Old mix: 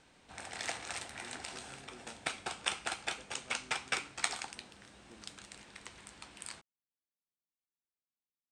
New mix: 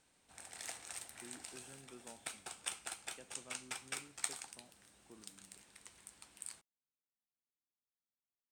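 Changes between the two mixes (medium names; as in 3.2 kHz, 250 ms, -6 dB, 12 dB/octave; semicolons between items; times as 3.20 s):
background -12.0 dB; master: remove distance through air 99 m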